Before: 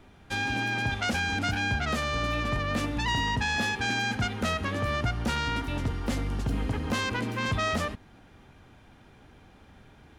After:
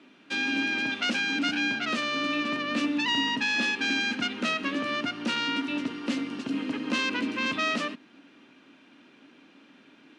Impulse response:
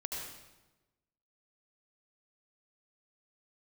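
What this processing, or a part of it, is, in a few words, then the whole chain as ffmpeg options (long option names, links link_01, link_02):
television speaker: -af "highpass=frequency=220:width=0.5412,highpass=frequency=220:width=1.3066,equalizer=frequency=280:width_type=q:width=4:gain=9,equalizer=frequency=450:width_type=q:width=4:gain=-4,equalizer=frequency=780:width_type=q:width=4:gain=-9,equalizer=frequency=2700:width_type=q:width=4:gain=8,equalizer=frequency=4100:width_type=q:width=4:gain=3,equalizer=frequency=7200:width_type=q:width=4:gain=-4,lowpass=frequency=8100:width=0.5412,lowpass=frequency=8100:width=1.3066"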